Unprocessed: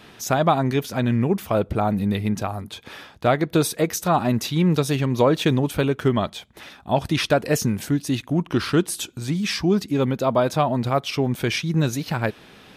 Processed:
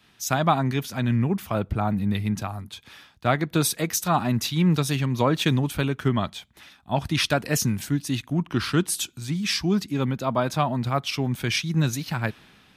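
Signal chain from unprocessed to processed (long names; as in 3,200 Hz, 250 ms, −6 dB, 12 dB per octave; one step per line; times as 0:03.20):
parametric band 480 Hz −8.5 dB 1.3 octaves
multiband upward and downward expander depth 40%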